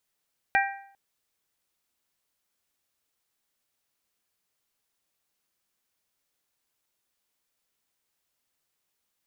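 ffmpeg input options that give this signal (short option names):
-f lavfi -i "aevalsrc='0.1*pow(10,-3*t/0.62)*sin(2*PI*790*t)+0.0841*pow(10,-3*t/0.504)*sin(2*PI*1580*t)+0.0708*pow(10,-3*t/0.477)*sin(2*PI*1896*t)+0.0596*pow(10,-3*t/0.446)*sin(2*PI*2370*t)':d=0.4:s=44100"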